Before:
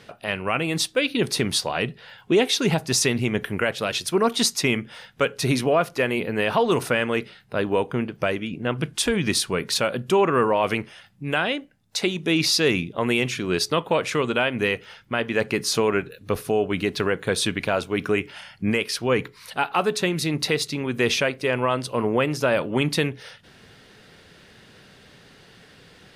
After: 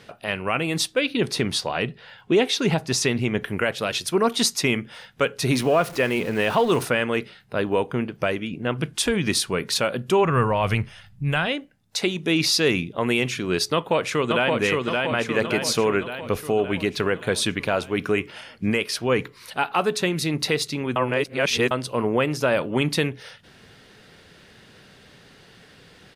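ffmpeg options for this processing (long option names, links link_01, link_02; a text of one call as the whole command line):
ffmpeg -i in.wav -filter_complex "[0:a]asettb=1/sr,asplit=3[link_01][link_02][link_03];[link_01]atrim=end=0.944[link_04];[link_02]atrim=start=0.94:end=3.48,asetpts=PTS-STARTPTS,afade=type=in:duration=0.004:curve=qsin,afade=type=out:start_time=2.536:duration=0.004:curve=qsin,highshelf=frequency=8400:gain=-9[link_05];[link_03]atrim=start=3.476[link_06];[link_04][link_05]acrossfade=duration=0.004:curve1=hsin:curve2=qsin[link_07];[link_07][link_06]acrossfade=duration=0.004:curve1=qsin:curve2=hsin,asettb=1/sr,asplit=3[link_08][link_09][link_10];[link_08]atrim=end=5.524[link_11];[link_09]atrim=start=5.52:end=6.85,asetpts=PTS-STARTPTS,afade=type=in:duration=0.004:curve=qsin,afade=type=out:start_time=1.326:duration=0.004:curve=qsin,aeval=exprs='val(0)+0.5*0.0188*sgn(val(0))':channel_layout=same[link_12];[link_10]atrim=start=6.846[link_13];[link_11][link_12]acrossfade=duration=0.004:curve1=hsin:curve2=qsin[link_14];[link_14][link_13]acrossfade=duration=0.004:curve1=qsin:curve2=hsin,asplit=3[link_15][link_16][link_17];[link_15]afade=type=out:start_time=10.23:duration=0.02[link_18];[link_16]asubboost=boost=9.5:cutoff=100,afade=type=in:start_time=10.23:duration=0.02,afade=type=out:start_time=11.46:duration=0.02[link_19];[link_17]afade=type=in:start_time=11.46:duration=0.02[link_20];[link_18][link_19][link_20]amix=inputs=3:normalize=0,asplit=2[link_21][link_22];[link_22]afade=type=in:start_time=13.73:duration=0.01,afade=type=out:start_time=14.58:duration=0.01,aecho=0:1:570|1140|1710|2280|2850|3420|3990|4560|5130:0.749894|0.449937|0.269962|0.161977|0.0971863|0.0583118|0.0349871|0.0209922|0.0125953[link_23];[link_21][link_23]amix=inputs=2:normalize=0,asplit=3[link_24][link_25][link_26];[link_24]atrim=end=20.962[link_27];[link_25]atrim=start=20.958:end=21.712,asetpts=PTS-STARTPTS,areverse[link_28];[link_26]atrim=start=21.708[link_29];[link_27][link_28]acrossfade=duration=0.004:curve1=hsin:curve2=hsin[link_30];[link_30][link_29]acrossfade=duration=0.004:curve1=hsin:curve2=hsin" out.wav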